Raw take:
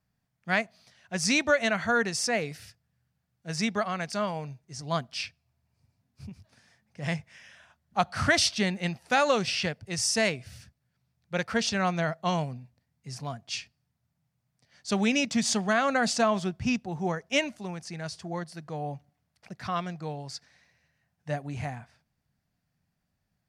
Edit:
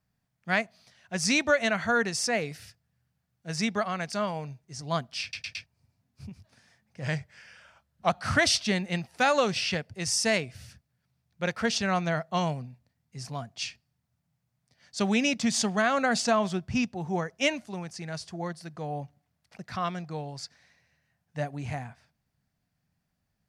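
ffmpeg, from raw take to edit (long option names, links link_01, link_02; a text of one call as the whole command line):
ffmpeg -i in.wav -filter_complex "[0:a]asplit=7[link_01][link_02][link_03][link_04][link_05][link_06][link_07];[link_01]atrim=end=5.332[link_08];[link_02]atrim=start=5.218:end=5.332[link_09];[link_03]atrim=start=5.218:end=5.332[link_10];[link_04]atrim=start=5.218:end=5.332[link_11];[link_05]atrim=start=5.658:end=7.024[link_12];[link_06]atrim=start=7.02:end=8.01,asetpts=PTS-STARTPTS,asetrate=40572,aresample=44100,atrim=end_sample=47455,asetpts=PTS-STARTPTS[link_13];[link_07]atrim=start=8.006[link_14];[link_08][link_09]acrossfade=duration=0.004:curve1=hsin:curve2=hsin[link_15];[link_15][link_10]acrossfade=duration=0.004:curve1=hsin:curve2=hsin[link_16];[link_16][link_11]acrossfade=duration=0.004:curve1=hsin:curve2=hsin[link_17];[link_17][link_12]acrossfade=duration=0.004:curve1=hsin:curve2=hsin[link_18];[link_18][link_13]acrossfade=duration=0.004:curve1=hsin:curve2=hsin[link_19];[link_19][link_14]acrossfade=duration=0.004:curve1=hsin:curve2=hsin" out.wav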